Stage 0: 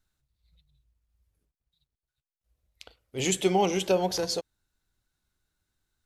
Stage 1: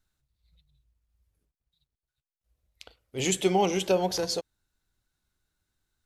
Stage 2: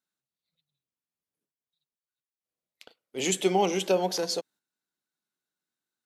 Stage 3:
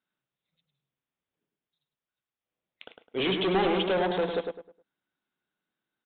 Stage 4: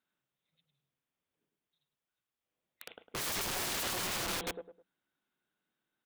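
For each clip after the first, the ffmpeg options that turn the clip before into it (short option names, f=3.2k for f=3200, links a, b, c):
-af anull
-af "highpass=f=180:w=0.5412,highpass=f=180:w=1.3066,agate=range=-8dB:threshold=-54dB:ratio=16:detection=peak"
-filter_complex "[0:a]aresample=8000,volume=28.5dB,asoftclip=hard,volume=-28.5dB,aresample=44100,asplit=2[a][b];[b]adelay=104,lowpass=f=2k:p=1,volume=-4.5dB,asplit=2[c][d];[d]adelay=104,lowpass=f=2k:p=1,volume=0.31,asplit=2[e][f];[f]adelay=104,lowpass=f=2k:p=1,volume=0.31,asplit=2[g][h];[h]adelay=104,lowpass=f=2k:p=1,volume=0.31[i];[a][c][e][g][i]amix=inputs=5:normalize=0,volume=5dB"
-af "bandreject=f=60:t=h:w=6,bandreject=f=120:t=h:w=6,bandreject=f=180:t=h:w=6,aeval=exprs='(mod(35.5*val(0)+1,2)-1)/35.5':c=same"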